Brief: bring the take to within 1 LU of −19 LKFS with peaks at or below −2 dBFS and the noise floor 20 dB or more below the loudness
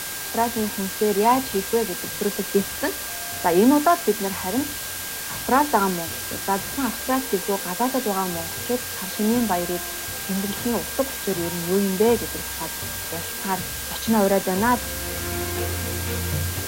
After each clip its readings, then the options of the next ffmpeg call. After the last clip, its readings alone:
interfering tone 1,600 Hz; level of the tone −39 dBFS; background noise floor −31 dBFS; target noise floor −44 dBFS; integrated loudness −23.5 LKFS; sample peak −5.5 dBFS; target loudness −19.0 LKFS
→ -af "bandreject=frequency=1600:width=30"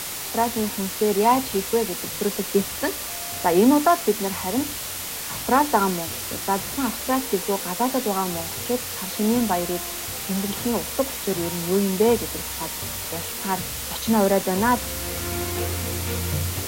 interfering tone none found; background noise floor −32 dBFS; target noise floor −44 dBFS
→ -af "afftdn=noise_reduction=12:noise_floor=-32"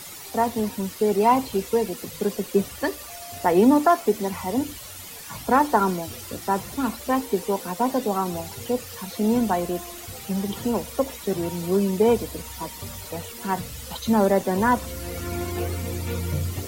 background noise floor −39 dBFS; target noise floor −45 dBFS
→ -af "afftdn=noise_reduction=6:noise_floor=-39"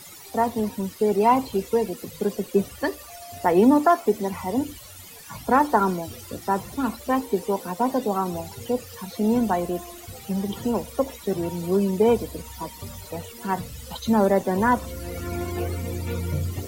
background noise floor −43 dBFS; target noise floor −45 dBFS
→ -af "afftdn=noise_reduction=6:noise_floor=-43"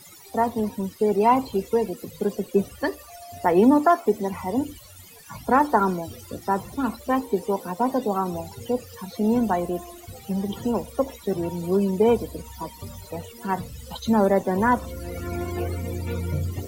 background noise floor −46 dBFS; integrated loudness −24.5 LKFS; sample peak −6.0 dBFS; target loudness −19.0 LKFS
→ -af "volume=5.5dB,alimiter=limit=-2dB:level=0:latency=1"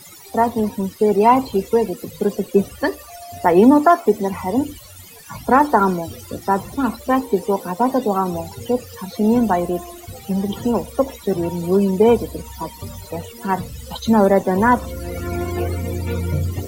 integrated loudness −19.0 LKFS; sample peak −2.0 dBFS; background noise floor −41 dBFS

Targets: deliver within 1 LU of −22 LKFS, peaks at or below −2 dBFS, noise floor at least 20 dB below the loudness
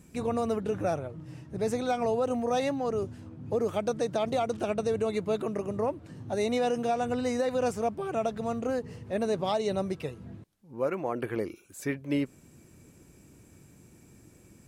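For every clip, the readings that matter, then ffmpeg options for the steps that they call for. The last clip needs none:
integrated loudness −30.5 LKFS; sample peak −17.0 dBFS; target loudness −22.0 LKFS
→ -af "volume=8.5dB"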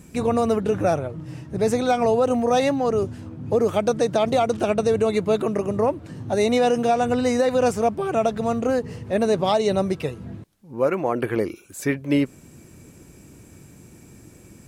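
integrated loudness −22.0 LKFS; sample peak −8.5 dBFS; background noise floor −48 dBFS

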